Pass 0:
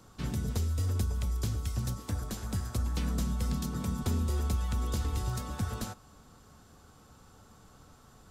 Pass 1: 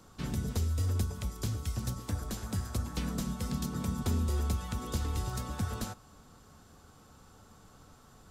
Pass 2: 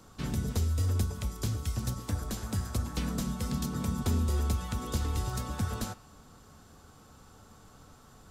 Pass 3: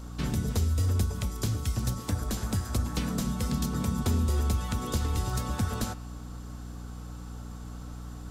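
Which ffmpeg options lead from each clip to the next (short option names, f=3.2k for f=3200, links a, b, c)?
-af "bandreject=f=60:t=h:w=6,bandreject=f=120:t=h:w=6"
-af "bandreject=f=178.7:t=h:w=4,bandreject=f=357.4:t=h:w=4,bandreject=f=536.1:t=h:w=4,bandreject=f=714.8:t=h:w=4,bandreject=f=893.5:t=h:w=4,bandreject=f=1.0722k:t=h:w=4,bandreject=f=1.2509k:t=h:w=4,bandreject=f=1.4296k:t=h:w=4,bandreject=f=1.6083k:t=h:w=4,bandreject=f=1.787k:t=h:w=4,bandreject=f=1.9657k:t=h:w=4,bandreject=f=2.1444k:t=h:w=4,bandreject=f=2.3231k:t=h:w=4,bandreject=f=2.5018k:t=h:w=4,bandreject=f=2.6805k:t=h:w=4,bandreject=f=2.8592k:t=h:w=4,bandreject=f=3.0379k:t=h:w=4,bandreject=f=3.2166k:t=h:w=4,bandreject=f=3.3953k:t=h:w=4,bandreject=f=3.574k:t=h:w=4,bandreject=f=3.7527k:t=h:w=4,bandreject=f=3.9314k:t=h:w=4,bandreject=f=4.1101k:t=h:w=4,bandreject=f=4.2888k:t=h:w=4,bandreject=f=4.4675k:t=h:w=4,bandreject=f=4.6462k:t=h:w=4,bandreject=f=4.8249k:t=h:w=4,bandreject=f=5.0036k:t=h:w=4,bandreject=f=5.1823k:t=h:w=4,bandreject=f=5.361k:t=h:w=4,bandreject=f=5.5397k:t=h:w=4,bandreject=f=5.7184k:t=h:w=4,volume=2dB"
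-filter_complex "[0:a]asplit=2[a][b];[b]acompressor=threshold=-37dB:ratio=6,volume=-0.5dB[c];[a][c]amix=inputs=2:normalize=0,aeval=exprs='val(0)+0.0112*(sin(2*PI*60*n/s)+sin(2*PI*2*60*n/s)/2+sin(2*PI*3*60*n/s)/3+sin(2*PI*4*60*n/s)/4+sin(2*PI*5*60*n/s)/5)':c=same"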